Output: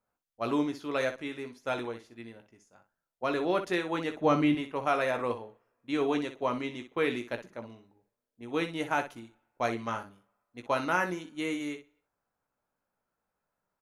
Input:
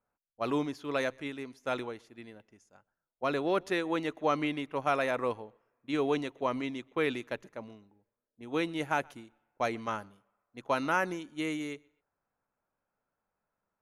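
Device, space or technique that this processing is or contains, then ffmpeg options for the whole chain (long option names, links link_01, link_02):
slapback doubling: -filter_complex "[0:a]asettb=1/sr,asplit=3[link_01][link_02][link_03];[link_01]atrim=end=4.144[link_04];[link_02]atrim=start=4.14:end=4.55,asetpts=PTS-STARTPTS,afade=type=in:duration=0.004:curve=qsin,afade=type=out:start_time=0.406:duration=0.004:curve=qsin,equalizer=frequency=88:width_type=o:width=3:gain=13.5[link_05];[link_03]atrim=start=4.546[link_06];[link_04][link_05]acrossfade=duration=0.004:curve1=hsin:curve2=qsin[link_07];[link_07][link_06]acrossfade=duration=0.004:curve1=qsin:curve2=hsin,asplit=3[link_08][link_09][link_10];[link_09]adelay=17,volume=-7.5dB[link_11];[link_10]adelay=61,volume=-10.5dB[link_12];[link_08][link_11][link_12]amix=inputs=3:normalize=0"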